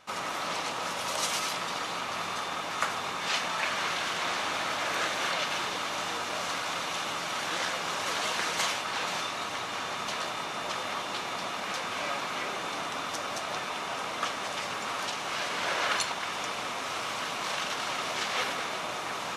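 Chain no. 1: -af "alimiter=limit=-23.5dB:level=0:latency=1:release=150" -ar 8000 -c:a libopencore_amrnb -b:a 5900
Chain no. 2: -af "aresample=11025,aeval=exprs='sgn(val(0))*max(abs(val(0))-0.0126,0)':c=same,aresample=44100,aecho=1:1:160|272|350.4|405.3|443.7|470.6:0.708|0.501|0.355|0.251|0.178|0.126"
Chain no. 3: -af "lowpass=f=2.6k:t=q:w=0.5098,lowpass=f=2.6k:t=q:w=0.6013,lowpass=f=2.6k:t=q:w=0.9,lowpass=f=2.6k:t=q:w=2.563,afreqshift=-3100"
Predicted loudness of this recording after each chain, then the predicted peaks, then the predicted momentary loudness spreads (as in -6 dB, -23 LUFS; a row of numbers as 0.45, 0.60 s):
-39.0, -32.5, -32.0 LUFS; -23.5, -12.0, -12.5 dBFS; 2, 6, 3 LU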